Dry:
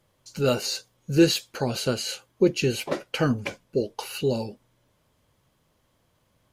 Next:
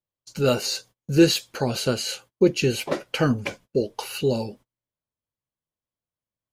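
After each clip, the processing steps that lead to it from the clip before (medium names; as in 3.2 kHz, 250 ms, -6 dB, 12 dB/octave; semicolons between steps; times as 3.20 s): gate -48 dBFS, range -30 dB; trim +2 dB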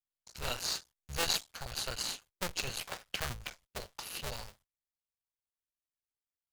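cycle switcher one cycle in 2, muted; amplifier tone stack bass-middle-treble 10-0-10; in parallel at -10 dB: sample-and-hold 14×; on the sum: trim -4 dB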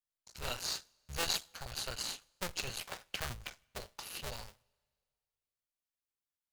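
two-slope reverb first 0.39 s, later 2.1 s, from -18 dB, DRR 19 dB; trim -2.5 dB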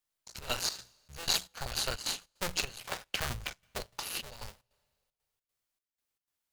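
hum notches 60/120/180 Hz; in parallel at +2 dB: peak limiter -24.5 dBFS, peak gain reduction 10.5 dB; on the sum: trance gate "xxxx.xx.xxx..xx." 153 bpm -12 dB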